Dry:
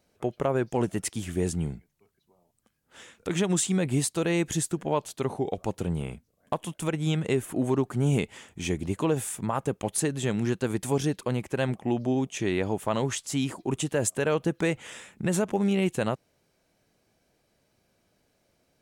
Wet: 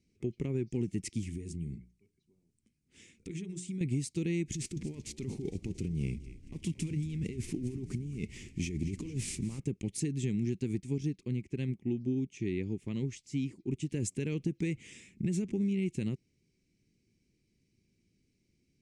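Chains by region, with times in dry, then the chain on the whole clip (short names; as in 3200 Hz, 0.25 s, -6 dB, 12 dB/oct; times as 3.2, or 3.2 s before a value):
1.26–3.81 bell 9100 Hz +5 dB 0.29 oct + compressor 12:1, threshold -32 dBFS + notches 60/120/180/240/300/360/420/480/540 Hz
4.54–9.6 CVSD 64 kbps + negative-ratio compressor -33 dBFS + frequency-shifting echo 0.228 s, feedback 61%, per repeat -81 Hz, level -16 dB
10.8–13.9 high shelf 8300 Hz -9.5 dB + upward expander, over -35 dBFS
whole clip: EQ curve 220 Hz 0 dB, 380 Hz -4 dB, 630 Hz -29 dB, 1500 Hz -26 dB, 2200 Hz -4 dB, 3400 Hz -12 dB, 5400 Hz -5 dB, 8800 Hz -10 dB, 14000 Hz -26 dB; compressor, threshold -28 dBFS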